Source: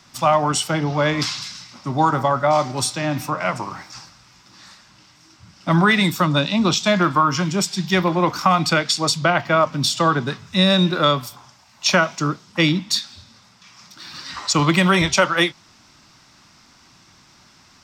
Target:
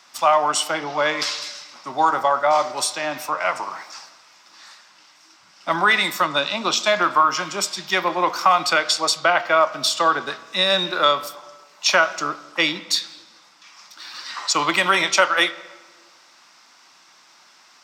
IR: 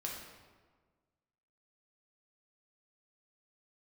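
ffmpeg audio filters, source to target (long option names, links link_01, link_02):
-filter_complex "[0:a]highpass=550,asplit=2[link_01][link_02];[1:a]atrim=start_sample=2205,lowpass=4100[link_03];[link_02][link_03]afir=irnorm=-1:irlink=0,volume=-11.5dB[link_04];[link_01][link_04]amix=inputs=2:normalize=0"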